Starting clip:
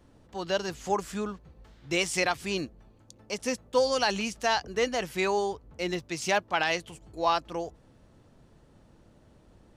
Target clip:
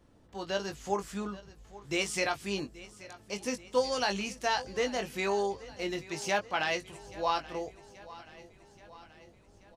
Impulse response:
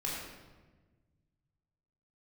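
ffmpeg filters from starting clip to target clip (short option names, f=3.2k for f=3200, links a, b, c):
-filter_complex "[0:a]asplit=2[a][b];[b]adelay=20,volume=-7dB[c];[a][c]amix=inputs=2:normalize=0,asplit=2[d][e];[e]aecho=0:1:830|1660|2490|3320|4150:0.119|0.0689|0.04|0.0232|0.0134[f];[d][f]amix=inputs=2:normalize=0,volume=-4.5dB"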